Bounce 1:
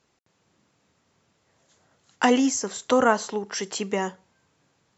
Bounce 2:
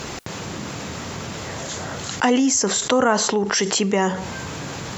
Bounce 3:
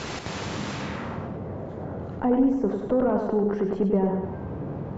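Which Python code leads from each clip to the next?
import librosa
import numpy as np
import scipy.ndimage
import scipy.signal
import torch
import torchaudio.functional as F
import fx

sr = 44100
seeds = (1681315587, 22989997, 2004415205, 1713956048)

y1 = fx.low_shelf(x, sr, hz=160.0, db=3.5)
y1 = fx.env_flatten(y1, sr, amount_pct=70)
y2 = fx.echo_feedback(y1, sr, ms=99, feedback_pct=49, wet_db=-6)
y2 = fx.tube_stage(y2, sr, drive_db=10.0, bias=0.4)
y2 = fx.filter_sweep_lowpass(y2, sr, from_hz=5100.0, to_hz=590.0, start_s=0.71, end_s=1.4, q=0.75)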